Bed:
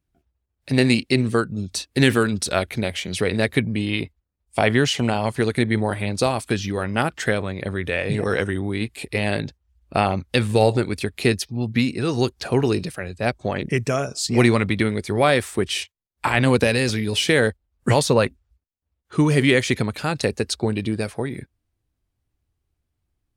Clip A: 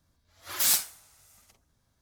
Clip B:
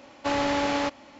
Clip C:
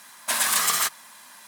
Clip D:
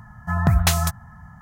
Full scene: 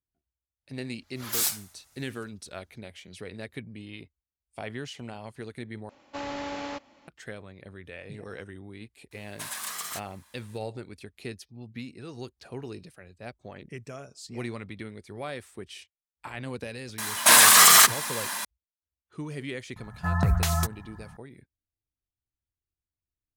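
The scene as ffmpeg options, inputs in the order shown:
-filter_complex "[3:a]asplit=2[a][b];[0:a]volume=-19dB[c];[b]alimiter=level_in=18.5dB:limit=-1dB:release=50:level=0:latency=1[d];[4:a]alimiter=limit=-10.5dB:level=0:latency=1:release=76[e];[c]asplit=2[f][g];[f]atrim=end=5.894[h];[2:a]atrim=end=1.19,asetpts=PTS-STARTPTS,volume=-9.5dB[i];[g]atrim=start=7.076[j];[1:a]atrim=end=2.01,asetpts=PTS-STARTPTS,volume=-3dB,afade=t=in:d=0.004:c=hsin,afade=t=out:st=2.006:d=0.004:c=hsin,adelay=730[k];[a]atrim=end=1.47,asetpts=PTS-STARTPTS,volume=-13.5dB,afade=t=in:d=0.004:c=hsin,afade=t=out:st=1.466:d=0.004:c=hsin,adelay=9110[l];[d]atrim=end=1.47,asetpts=PTS-STARTPTS,volume=-3.5dB,afade=t=in:d=0.004:c=hsin,afade=t=out:st=1.466:d=0.004:c=hsin,adelay=16980[m];[e]atrim=end=1.41,asetpts=PTS-STARTPTS,volume=-3.5dB,afade=t=in:d=0.004:c=hsin,afade=t=out:st=1.406:d=0.004:c=hsin,adelay=19760[n];[h][i]acrossfade=d=0.004:c1=hsin:c2=hsin[o];[o][j]acrossfade=d=0.004:c1=hsin:c2=hsin[p];[p][k][l][m][n]amix=inputs=5:normalize=0"

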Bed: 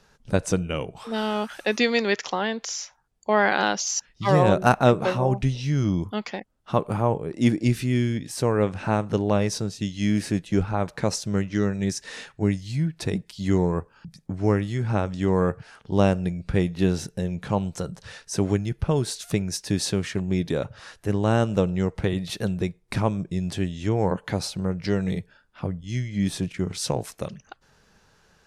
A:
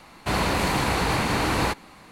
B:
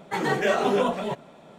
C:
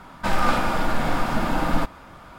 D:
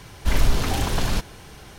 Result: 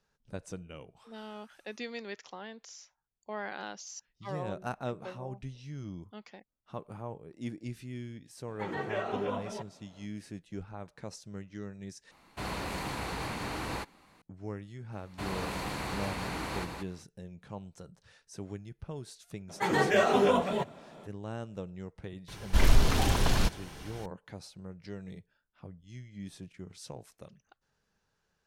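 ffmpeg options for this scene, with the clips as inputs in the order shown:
-filter_complex "[2:a]asplit=2[a][b];[1:a]asplit=2[c][d];[0:a]volume=-18.5dB[e];[a]acrossover=split=3800[f][g];[g]acompressor=threshold=-58dB:ratio=4:attack=1:release=60[h];[f][h]amix=inputs=2:normalize=0[i];[d]aecho=1:1:175:0.562[j];[4:a]highshelf=f=11k:g=-3.5[k];[e]asplit=2[l][m];[l]atrim=end=12.114[n];[c]atrim=end=2.11,asetpts=PTS-STARTPTS,volume=-13dB[o];[m]atrim=start=14.216[p];[i]atrim=end=1.58,asetpts=PTS-STARTPTS,volume=-11.5dB,afade=t=in:d=0.004:c=hsin,afade=t=out:st=1.576:d=0.004:c=hsin,adelay=8480[q];[j]atrim=end=2.11,asetpts=PTS-STARTPTS,volume=-14dB,afade=t=in:d=0.004:c=hsin,afade=t=out:st=2.106:d=0.004:c=hsin,adelay=657972S[r];[b]atrim=end=1.58,asetpts=PTS-STARTPTS,volume=-2dB,afade=t=in:d=0.004:c=hsin,afade=t=out:st=1.576:d=0.004:c=hsin,adelay=19490[s];[k]atrim=end=1.78,asetpts=PTS-STARTPTS,volume=-3dB,afade=t=in:d=0.004:c=hsin,afade=t=out:st=1.776:d=0.004:c=hsin,adelay=982548S[t];[n][o]acrossfade=d=0.004:c1=hsin:c2=hsin[u];[u][p]acrossfade=d=0.004:c1=hsin:c2=hsin[v];[v][q][r][s][t]amix=inputs=5:normalize=0"

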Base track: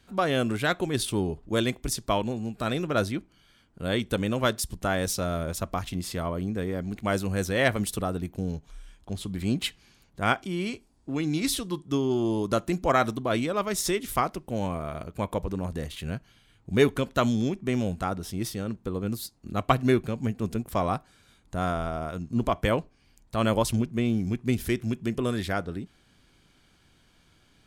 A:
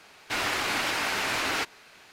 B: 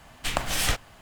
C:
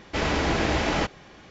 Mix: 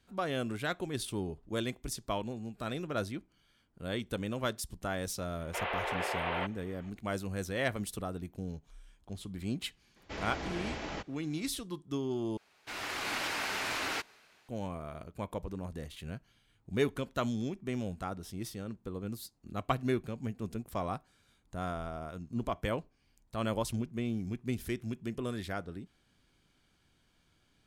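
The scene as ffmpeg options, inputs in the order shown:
-filter_complex "[3:a]asplit=2[a][b];[0:a]volume=-9dB[c];[a]highpass=f=390:t=q:w=0.5412,highpass=f=390:t=q:w=1.307,lowpass=f=3.2k:t=q:w=0.5176,lowpass=f=3.2k:t=q:w=0.7071,lowpass=f=3.2k:t=q:w=1.932,afreqshift=78[d];[1:a]dynaudnorm=f=150:g=7:m=8dB[e];[c]asplit=2[f][g];[f]atrim=end=12.374[h];[e]atrim=end=2.12,asetpts=PTS-STARTPTS,volume=-14.5dB[i];[g]atrim=start=14.486[j];[d]atrim=end=1.5,asetpts=PTS-STARTPTS,volume=-8dB,afade=t=in:d=0.004:c=hsin,afade=t=out:st=1.496:d=0.004:c=hsin,adelay=5400[k];[b]atrim=end=1.5,asetpts=PTS-STARTPTS,volume=-15dB,afade=t=in:d=0.004:c=hsin,afade=t=out:st=1.496:d=0.004:c=hsin,adelay=9960[l];[h][i]acrossfade=d=0.004:c1=hsin:c2=hsin[m];[m][j]acrossfade=d=0.004:c1=hsin:c2=hsin[n];[n][k][l]amix=inputs=3:normalize=0"

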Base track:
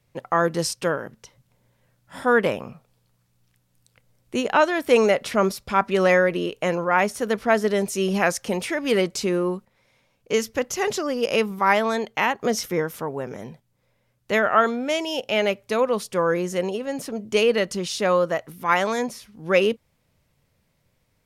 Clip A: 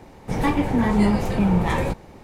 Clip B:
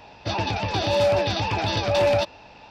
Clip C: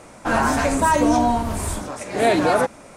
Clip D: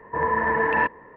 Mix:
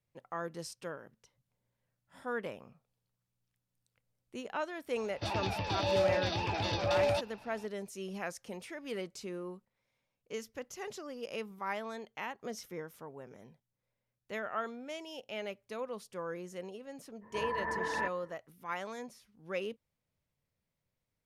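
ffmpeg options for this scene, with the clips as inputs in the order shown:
-filter_complex "[0:a]volume=-18.5dB[a];[2:a]atrim=end=2.7,asetpts=PTS-STARTPTS,volume=-9.5dB,afade=t=in:d=0.004:c=hsin,afade=t=out:st=2.696:d=0.004:c=hsin,adelay=4960[b];[4:a]atrim=end=1.16,asetpts=PTS-STARTPTS,volume=-13.5dB,afade=t=in:d=0.02,afade=t=out:st=1.14:d=0.02,adelay=17210[c];[a][b][c]amix=inputs=3:normalize=0"

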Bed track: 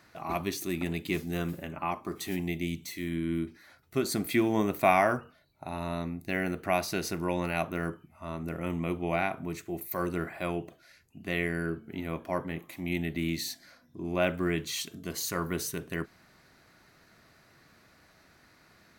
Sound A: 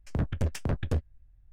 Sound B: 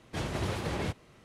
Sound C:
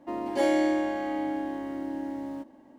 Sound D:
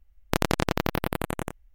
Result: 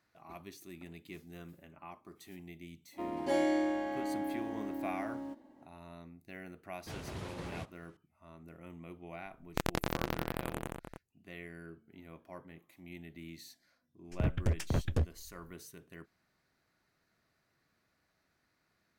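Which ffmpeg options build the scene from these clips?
-filter_complex "[0:a]volume=-17dB[a];[4:a]asplit=2[b][c];[c]adelay=303.2,volume=-8dB,highshelf=f=4k:g=-6.82[d];[b][d]amix=inputs=2:normalize=0[e];[3:a]atrim=end=2.78,asetpts=PTS-STARTPTS,volume=-6dB,afade=t=in:d=0.05,afade=t=out:st=2.73:d=0.05,adelay=2910[f];[2:a]atrim=end=1.24,asetpts=PTS-STARTPTS,volume=-10.5dB,afade=t=in:d=0.004:c=hsin,afade=t=out:st=1.236:d=0.004:c=hsin,adelay=6730[g];[e]atrim=end=1.74,asetpts=PTS-STARTPTS,volume=-9.5dB,afade=t=in:d=0.004:c=hsin,afade=t=out:st=1.736:d=0.004:c=hsin,adelay=9240[h];[1:a]atrim=end=1.52,asetpts=PTS-STARTPTS,volume=-2.5dB,afade=t=in:d=0.1,afade=t=out:st=1.42:d=0.1,adelay=14050[i];[a][f][g][h][i]amix=inputs=5:normalize=0"

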